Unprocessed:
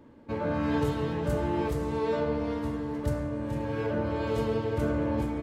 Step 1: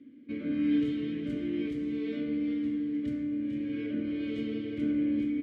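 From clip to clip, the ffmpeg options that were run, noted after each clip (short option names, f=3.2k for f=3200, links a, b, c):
-filter_complex "[0:a]asplit=3[a][b][c];[a]bandpass=f=270:t=q:w=8,volume=0dB[d];[b]bandpass=f=2.29k:t=q:w=8,volume=-6dB[e];[c]bandpass=f=3.01k:t=q:w=8,volume=-9dB[f];[d][e][f]amix=inputs=3:normalize=0,volume=8.5dB"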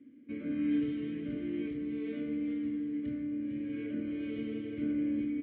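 -af "lowpass=f=3k:w=0.5412,lowpass=f=3k:w=1.3066,volume=-3.5dB"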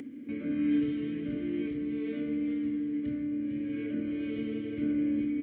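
-af "acompressor=mode=upward:threshold=-36dB:ratio=2.5,volume=3dB"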